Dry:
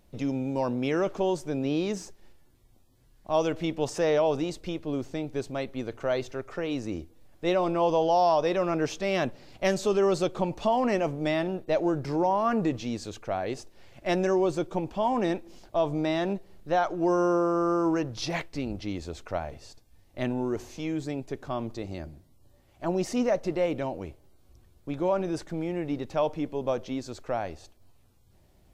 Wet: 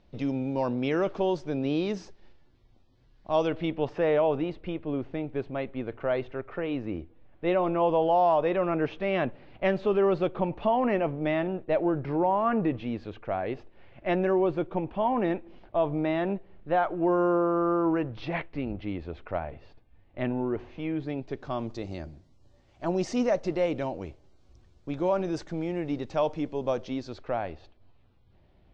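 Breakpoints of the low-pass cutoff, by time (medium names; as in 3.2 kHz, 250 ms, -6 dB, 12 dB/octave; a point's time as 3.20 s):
low-pass 24 dB/octave
3.33 s 4.8 kHz
3.92 s 2.9 kHz
20.94 s 2.9 kHz
21.60 s 6.6 kHz
26.76 s 6.6 kHz
27.39 s 3.7 kHz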